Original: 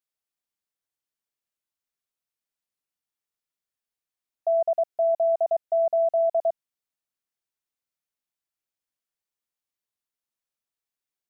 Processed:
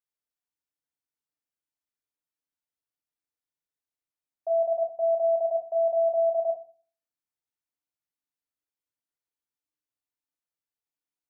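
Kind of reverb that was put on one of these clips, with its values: FDN reverb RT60 0.42 s, low-frequency decay 1.45×, high-frequency decay 0.35×, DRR 0.5 dB; trim -8 dB

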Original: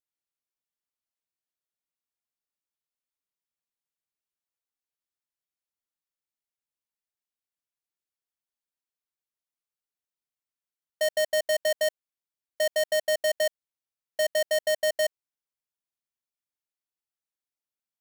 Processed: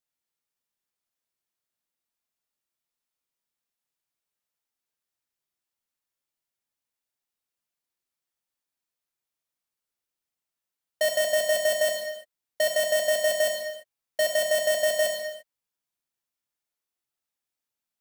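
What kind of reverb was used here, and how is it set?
gated-style reverb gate 370 ms falling, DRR 1.5 dB; trim +2.5 dB

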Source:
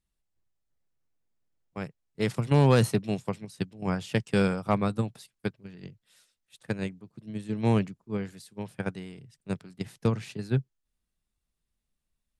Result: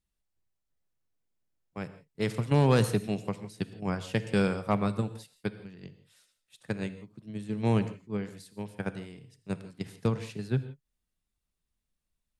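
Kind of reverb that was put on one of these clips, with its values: gated-style reverb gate 190 ms flat, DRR 12 dB; trim -2 dB

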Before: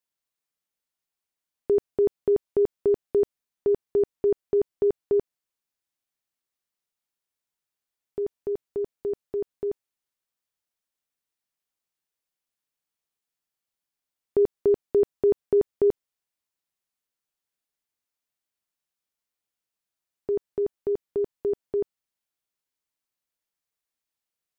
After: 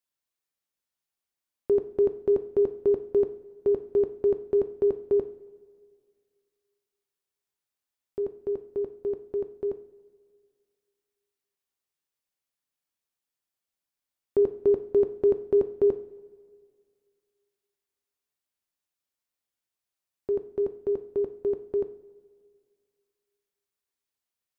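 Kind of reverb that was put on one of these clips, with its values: two-slope reverb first 0.44 s, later 2.1 s, from -16 dB, DRR 8 dB; trim -2 dB

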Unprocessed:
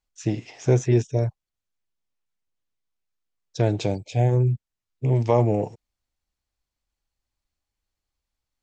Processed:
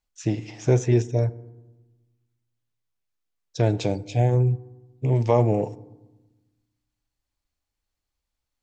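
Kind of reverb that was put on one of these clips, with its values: FDN reverb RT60 1.1 s, low-frequency decay 1.45×, high-frequency decay 0.45×, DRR 16.5 dB

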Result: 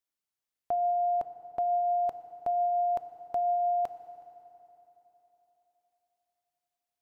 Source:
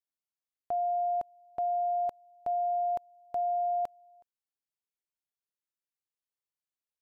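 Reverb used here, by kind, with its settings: FDN reverb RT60 3.6 s, high-frequency decay 0.8×, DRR 11 dB; trim +3 dB

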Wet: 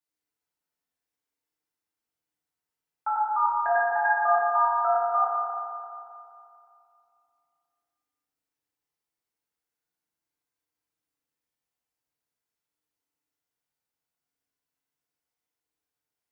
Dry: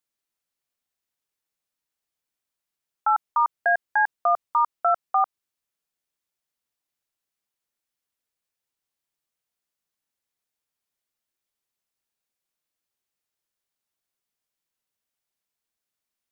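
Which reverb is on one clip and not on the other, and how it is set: FDN reverb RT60 2.6 s, high-frequency decay 0.3×, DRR -8 dB; trim -9.5 dB

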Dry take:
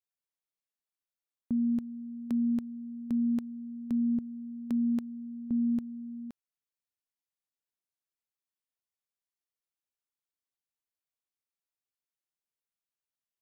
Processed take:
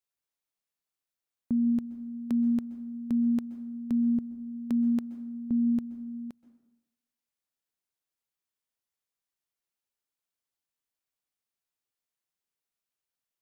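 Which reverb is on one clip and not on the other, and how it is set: plate-style reverb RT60 0.93 s, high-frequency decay 0.6×, pre-delay 115 ms, DRR 14.5 dB; trim +2.5 dB

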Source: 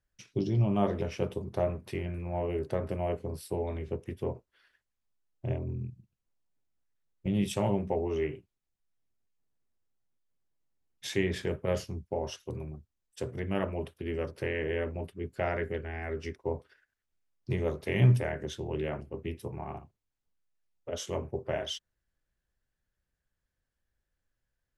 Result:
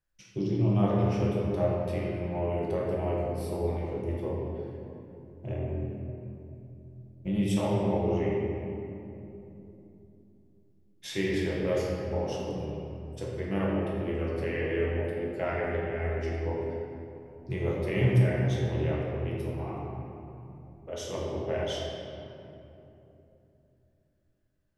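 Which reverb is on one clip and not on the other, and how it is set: simulated room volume 130 m³, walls hard, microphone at 0.69 m; trim -4 dB

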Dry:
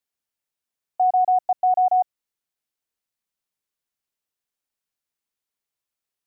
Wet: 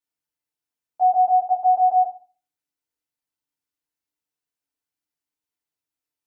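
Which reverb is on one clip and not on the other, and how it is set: FDN reverb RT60 0.36 s, low-frequency decay 1.35×, high-frequency decay 0.75×, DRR -6 dB; trim -9.5 dB

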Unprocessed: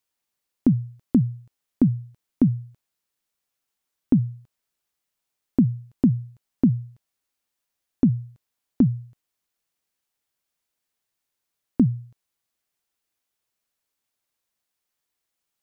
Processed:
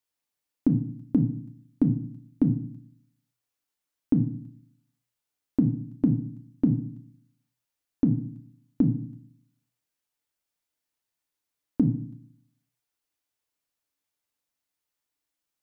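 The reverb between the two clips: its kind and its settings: FDN reverb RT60 0.55 s, low-frequency decay 1.4×, high-frequency decay 0.8×, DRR 5 dB; trim -5 dB

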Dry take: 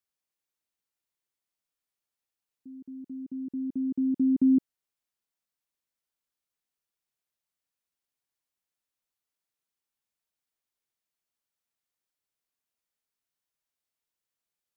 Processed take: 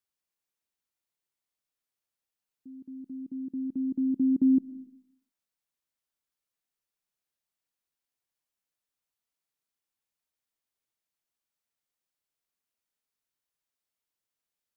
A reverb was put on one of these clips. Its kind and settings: algorithmic reverb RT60 0.58 s, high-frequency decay 0.3×, pre-delay 75 ms, DRR 17.5 dB; trim -1 dB

